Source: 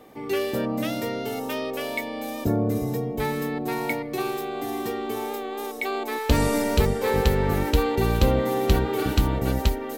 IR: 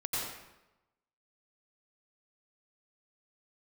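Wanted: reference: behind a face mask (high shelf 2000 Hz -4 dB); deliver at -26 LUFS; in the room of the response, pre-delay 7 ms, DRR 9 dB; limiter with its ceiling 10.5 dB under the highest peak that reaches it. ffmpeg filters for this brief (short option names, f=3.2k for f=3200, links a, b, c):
-filter_complex "[0:a]alimiter=limit=-16.5dB:level=0:latency=1,asplit=2[a][b];[1:a]atrim=start_sample=2205,adelay=7[c];[b][c]afir=irnorm=-1:irlink=0,volume=-14.5dB[d];[a][d]amix=inputs=2:normalize=0,highshelf=f=2k:g=-4,volume=1.5dB"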